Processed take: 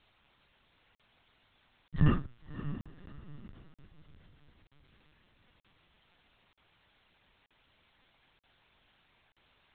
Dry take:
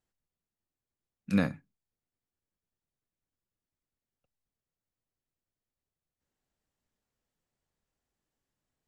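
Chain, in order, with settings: speed glide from 60% -> 122%; low shelf 98 Hz +10.5 dB; transient shaper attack +5 dB, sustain -8 dB; requantised 10-bit, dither triangular; flange 1 Hz, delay 4 ms, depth 6.2 ms, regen +24%; diffused feedback echo 0.589 s, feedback 42%, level -12 dB; LPC vocoder at 8 kHz pitch kept; crackling interface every 0.93 s, samples 2048, zero, from 0.95; gain +1.5 dB

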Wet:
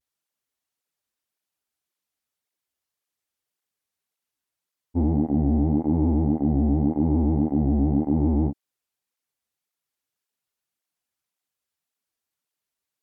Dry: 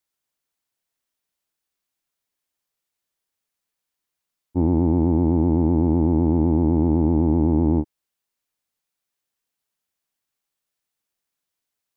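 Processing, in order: vibrato 0.94 Hz 62 cents; speed mistake 48 kHz file played as 44.1 kHz; tape flanging out of phase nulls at 1.8 Hz, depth 7.1 ms

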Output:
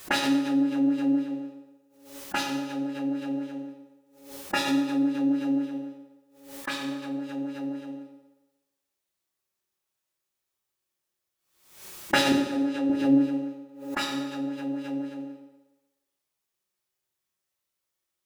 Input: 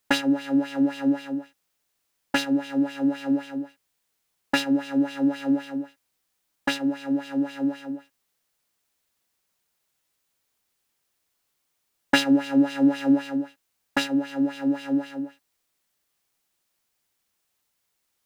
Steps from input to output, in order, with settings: spectral noise reduction 9 dB; 12.32–12.9 weighting filter A; reverb RT60 1.1 s, pre-delay 3 ms, DRR -2 dB; backwards sustainer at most 84 dB/s; gain -3 dB

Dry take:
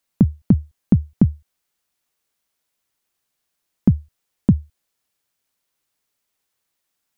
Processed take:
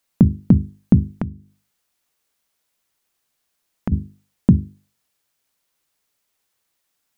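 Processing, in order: notches 50/100/150/200/250/300/350/400 Hz; 1.1–3.92 compressor 4:1, threshold -28 dBFS, peak gain reduction 14.5 dB; gain +3 dB

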